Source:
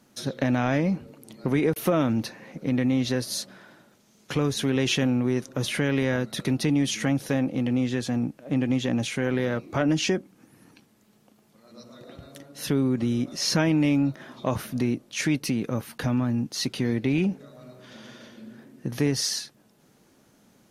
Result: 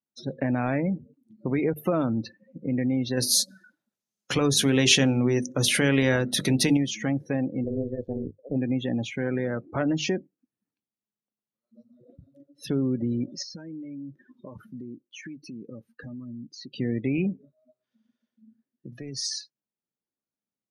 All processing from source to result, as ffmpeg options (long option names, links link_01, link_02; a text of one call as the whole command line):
ffmpeg -i in.wav -filter_complex "[0:a]asettb=1/sr,asplit=3[link_01][link_02][link_03];[link_01]atrim=end=3.174[link_04];[link_02]atrim=start=3.17:end=6.77,asetpts=PTS-STARTPTS,afade=type=in:duration=0.004:curve=qsin,afade=type=out:start_time=3.596:duration=0.004:curve=qsin,bandreject=frequency=50:width_type=h:width=6,bandreject=frequency=100:width_type=h:width=6,bandreject=frequency=150:width_type=h:width=6,bandreject=frequency=200:width_type=h:width=6,bandreject=frequency=250:width_type=h:width=6,bandreject=frequency=300:width_type=h:width=6,bandreject=frequency=350:width_type=h:width=6,bandreject=frequency=400:width_type=h:width=6,bandreject=frequency=450:width_type=h:width=6,acontrast=24,highshelf=frequency=3600:gain=9[link_05];[link_03]atrim=start=6.766[link_06];[link_04][link_05]acrossfade=duration=0.004:curve1=hsin:curve2=qsin[link_07];[link_07][link_06]acrossfade=duration=0.004:curve1=qsin:curve2=hsin,asettb=1/sr,asplit=3[link_08][link_09][link_10];[link_08]atrim=end=7.644[link_11];[link_09]atrim=start=7.64:end=8.56,asetpts=PTS-STARTPTS,afade=type=in:duration=0.004:curve=qsin,afade=type=out:start_time=0.916:duration=0.004:curve=qsin,lowpass=frequency=1400:poles=1,tremolo=f=140:d=0.974,equalizer=frequency=500:width_type=o:width=0.35:gain=11[link_12];[link_10]atrim=start=8.556[link_13];[link_11][link_12]acrossfade=duration=0.004:curve1=hsin:curve2=qsin[link_14];[link_14][link_13]acrossfade=duration=0.004:curve1=qsin:curve2=hsin,asettb=1/sr,asplit=3[link_15][link_16][link_17];[link_15]atrim=end=13.424[link_18];[link_16]atrim=start=13.42:end=16.72,asetpts=PTS-STARTPTS,afade=type=in:duration=0.004:curve=qsin,afade=type=out:start_time=3.296:duration=0.004:curve=qsin,equalizer=frequency=91:width_type=o:width=1.7:gain=-5.5,acompressor=threshold=-33dB:ratio=6:attack=3.2:release=140:knee=1:detection=peak,asuperstop=centerf=680:order=4:qfactor=6.3[link_19];[link_17]atrim=start=16.716[link_20];[link_18][link_19]acrossfade=duration=0.004:curve1=hsin:curve2=qsin[link_21];[link_21][link_20]acrossfade=duration=0.004:curve1=qsin:curve2=hsin,asettb=1/sr,asplit=3[link_22][link_23][link_24];[link_22]atrim=end=17.524[link_25];[link_23]atrim=start=17.52:end=19.25,asetpts=PTS-STARTPTS,afade=type=in:duration=0.004:curve=qsin,afade=type=out:start_time=1.726:duration=0.004:curve=qsin,lowshelf=frequency=420:gain=-8,aeval=exprs='clip(val(0),-1,0.0596)':channel_layout=same,acrossover=split=140|3000[link_26][link_27][link_28];[link_27]acompressor=threshold=-32dB:ratio=10:attack=3.2:release=140:knee=2.83:detection=peak[link_29];[link_26][link_29][link_28]amix=inputs=3:normalize=0[link_30];[link_24]atrim=start=19.246[link_31];[link_25][link_30]acrossfade=duration=0.004:curve1=hsin:curve2=qsin[link_32];[link_32][link_31]acrossfade=duration=0.004:curve1=qsin:curve2=hsin,bandreject=frequency=50:width_type=h:width=6,bandreject=frequency=100:width_type=h:width=6,bandreject=frequency=150:width_type=h:width=6,afftdn=noise_reduction=36:noise_floor=-33,volume=-2dB" out.wav